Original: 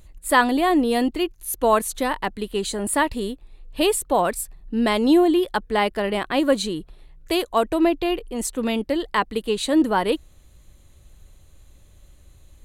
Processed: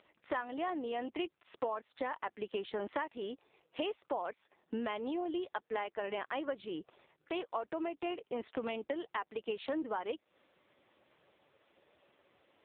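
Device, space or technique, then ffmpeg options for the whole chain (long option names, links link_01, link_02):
voicemail: -af "highpass=420,lowpass=3000,acompressor=threshold=-35dB:ratio=10,volume=2dB" -ar 8000 -c:a libopencore_amrnb -b:a 5900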